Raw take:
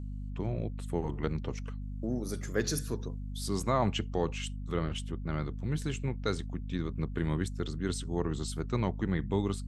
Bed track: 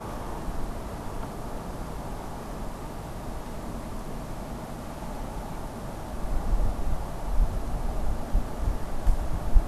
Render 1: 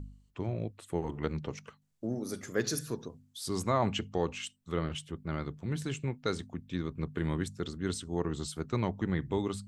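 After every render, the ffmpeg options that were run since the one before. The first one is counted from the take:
ffmpeg -i in.wav -af "bandreject=frequency=50:width_type=h:width=4,bandreject=frequency=100:width_type=h:width=4,bandreject=frequency=150:width_type=h:width=4,bandreject=frequency=200:width_type=h:width=4,bandreject=frequency=250:width_type=h:width=4" out.wav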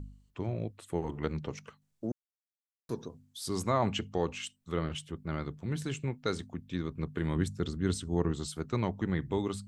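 ffmpeg -i in.wav -filter_complex "[0:a]asettb=1/sr,asplit=3[link_01][link_02][link_03];[link_01]atrim=end=7.364[link_04];[link_02]atrim=start=7.36:end=8.32,asetpts=PTS-STARTPTS,afade=type=in:duration=0.004:curve=qsin,afade=type=out:start_time=0.956:duration=0.004:curve=qsin,lowshelf=frequency=240:gain=7[link_05];[link_03]atrim=start=8.316[link_06];[link_04][link_05]acrossfade=duration=0.004:curve1=hsin:curve2=qsin[link_07];[link_07][link_06]acrossfade=duration=0.004:curve1=qsin:curve2=hsin,asplit=3[link_08][link_09][link_10];[link_08]atrim=end=2.12,asetpts=PTS-STARTPTS,afade=type=out:start_time=2.116:duration=0.004:curve=hsin[link_11];[link_09]atrim=start=2.12:end=2.89,asetpts=PTS-STARTPTS,volume=0[link_12];[link_10]atrim=start=2.89,asetpts=PTS-STARTPTS,afade=type=in:duration=0.004:curve=hsin[link_13];[link_11][link_12][link_13]concat=n=3:v=0:a=1" out.wav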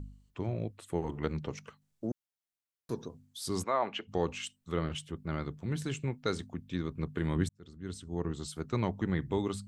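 ffmpeg -i in.wav -filter_complex "[0:a]asplit=3[link_01][link_02][link_03];[link_01]afade=type=out:start_time=3.63:duration=0.02[link_04];[link_02]highpass=450,lowpass=3100,afade=type=in:start_time=3.63:duration=0.02,afade=type=out:start_time=4.07:duration=0.02[link_05];[link_03]afade=type=in:start_time=4.07:duration=0.02[link_06];[link_04][link_05][link_06]amix=inputs=3:normalize=0,asplit=2[link_07][link_08];[link_07]atrim=end=7.49,asetpts=PTS-STARTPTS,afade=type=out:start_time=7.486:duration=0.004:curve=hsin[link_09];[link_08]atrim=start=7.49,asetpts=PTS-STARTPTS,afade=type=in:duration=1.32[link_10];[link_09][link_10]concat=n=2:v=0:a=1" out.wav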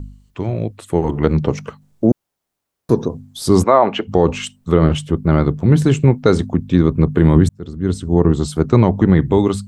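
ffmpeg -i in.wav -filter_complex "[0:a]acrossover=split=1100[link_01][link_02];[link_01]dynaudnorm=framelen=480:gausssize=5:maxgain=10dB[link_03];[link_03][link_02]amix=inputs=2:normalize=0,alimiter=level_in=12.5dB:limit=-1dB:release=50:level=0:latency=1" out.wav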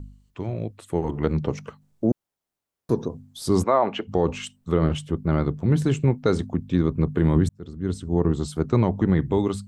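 ffmpeg -i in.wav -af "volume=-8dB" out.wav

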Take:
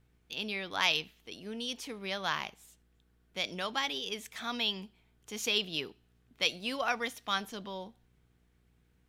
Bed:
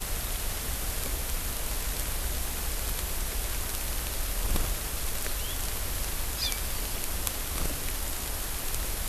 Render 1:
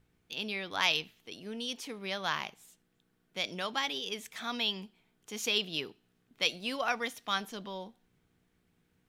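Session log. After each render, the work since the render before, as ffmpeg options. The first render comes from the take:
ffmpeg -i in.wav -af "bandreject=frequency=60:width_type=h:width=4,bandreject=frequency=120:width_type=h:width=4" out.wav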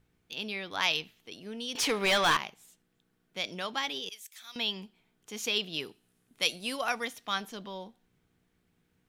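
ffmpeg -i in.wav -filter_complex "[0:a]asettb=1/sr,asplit=3[link_01][link_02][link_03];[link_01]atrim=end=1.754[link_04];[link_02]atrim=start=1.75:end=2.37,asetpts=PTS-STARTPTS,afade=type=in:duration=0.004:curve=qsin,afade=type=out:start_time=0.616:duration=0.004:curve=qsin,asplit=2[link_05][link_06];[link_06]highpass=frequency=720:poles=1,volume=26dB,asoftclip=type=tanh:threshold=-16dB[link_07];[link_05][link_07]amix=inputs=2:normalize=0,lowpass=frequency=6600:poles=1,volume=-6dB[link_08];[link_03]atrim=start=2.366[link_09];[link_04][link_08]acrossfade=duration=0.004:curve1=hsin:curve2=qsin[link_10];[link_10][link_09]acrossfade=duration=0.004:curve1=qsin:curve2=hsin,asettb=1/sr,asplit=3[link_11][link_12][link_13];[link_11]atrim=end=4.094[link_14];[link_12]atrim=start=4.09:end=4.56,asetpts=PTS-STARTPTS,afade=type=in:duration=0.004:curve=qsin,afade=type=out:start_time=0.466:duration=0.004:curve=qsin,aderivative[link_15];[link_13]atrim=start=4.556[link_16];[link_14][link_15]acrossfade=duration=0.004:curve1=hsin:curve2=qsin[link_17];[link_17][link_16]acrossfade=duration=0.004:curve1=qsin:curve2=hsin,asettb=1/sr,asplit=3[link_18][link_19][link_20];[link_18]atrim=end=5.804[link_21];[link_19]atrim=start=5.8:end=7.05,asetpts=PTS-STARTPTS,afade=type=in:duration=0.004:curve=qsin,afade=type=out:start_time=1.246:duration=0.004:curve=qsin,equalizer=frequency=10000:width_type=o:width=0.92:gain=12.5[link_22];[link_20]atrim=start=7.046[link_23];[link_21][link_22]acrossfade=duration=0.004:curve1=hsin:curve2=qsin[link_24];[link_24][link_23]acrossfade=duration=0.004:curve1=qsin:curve2=hsin" out.wav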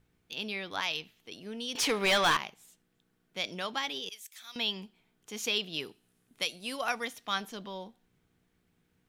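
ffmpeg -i in.wav -af "alimiter=limit=-17.5dB:level=0:latency=1:release=478" out.wav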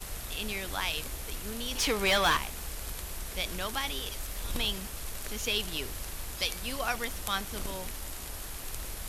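ffmpeg -i in.wav -i bed.wav -filter_complex "[1:a]volume=-7dB[link_01];[0:a][link_01]amix=inputs=2:normalize=0" out.wav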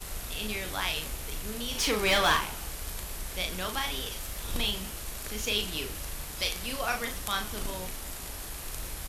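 ffmpeg -i in.wav -filter_complex "[0:a]asplit=2[link_01][link_02];[link_02]adelay=38,volume=-5.5dB[link_03];[link_01][link_03]amix=inputs=2:normalize=0,asplit=6[link_04][link_05][link_06][link_07][link_08][link_09];[link_05]adelay=90,afreqshift=-93,volume=-17.5dB[link_10];[link_06]adelay=180,afreqshift=-186,volume=-23dB[link_11];[link_07]adelay=270,afreqshift=-279,volume=-28.5dB[link_12];[link_08]adelay=360,afreqshift=-372,volume=-34dB[link_13];[link_09]adelay=450,afreqshift=-465,volume=-39.6dB[link_14];[link_04][link_10][link_11][link_12][link_13][link_14]amix=inputs=6:normalize=0" out.wav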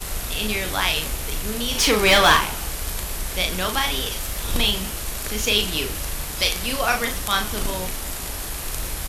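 ffmpeg -i in.wav -af "volume=9.5dB,alimiter=limit=-2dB:level=0:latency=1" out.wav

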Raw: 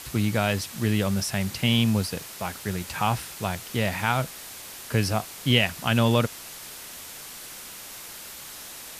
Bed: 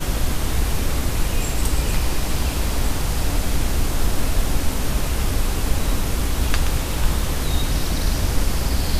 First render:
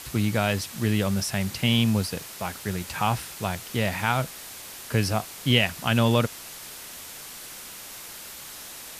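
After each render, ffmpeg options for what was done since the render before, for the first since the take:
ffmpeg -i in.wav -af anull out.wav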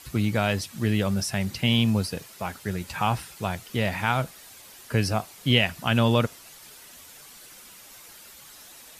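ffmpeg -i in.wav -af "afftdn=noise_reduction=9:noise_floor=-41" out.wav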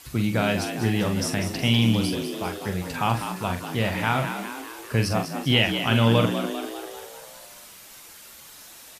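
ffmpeg -i in.wav -filter_complex "[0:a]asplit=2[link_01][link_02];[link_02]adelay=44,volume=-7dB[link_03];[link_01][link_03]amix=inputs=2:normalize=0,asplit=8[link_04][link_05][link_06][link_07][link_08][link_09][link_10][link_11];[link_05]adelay=198,afreqshift=68,volume=-8.5dB[link_12];[link_06]adelay=396,afreqshift=136,volume=-13.1dB[link_13];[link_07]adelay=594,afreqshift=204,volume=-17.7dB[link_14];[link_08]adelay=792,afreqshift=272,volume=-22.2dB[link_15];[link_09]adelay=990,afreqshift=340,volume=-26.8dB[link_16];[link_10]adelay=1188,afreqshift=408,volume=-31.4dB[link_17];[link_11]adelay=1386,afreqshift=476,volume=-36dB[link_18];[link_04][link_12][link_13][link_14][link_15][link_16][link_17][link_18]amix=inputs=8:normalize=0" out.wav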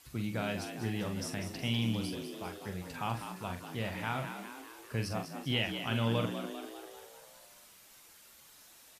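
ffmpeg -i in.wav -af "volume=-12dB" out.wav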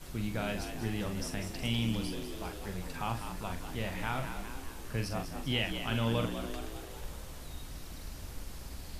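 ffmpeg -i in.wav -i bed.wav -filter_complex "[1:a]volume=-23.5dB[link_01];[0:a][link_01]amix=inputs=2:normalize=0" out.wav

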